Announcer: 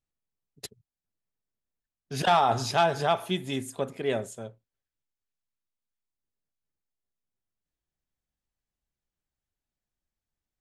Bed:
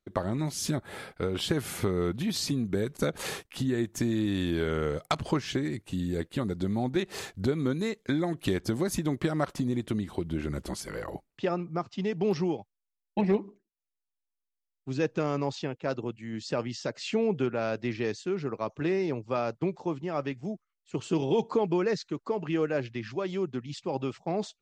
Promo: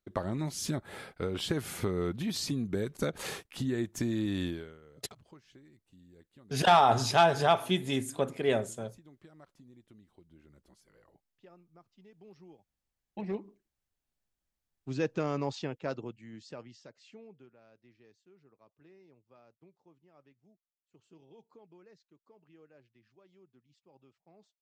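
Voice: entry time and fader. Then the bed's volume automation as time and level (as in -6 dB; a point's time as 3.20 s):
4.40 s, +0.5 dB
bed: 4.46 s -3.5 dB
4.80 s -27.5 dB
12.36 s -27.5 dB
13.72 s -3 dB
15.80 s -3 dB
17.60 s -31 dB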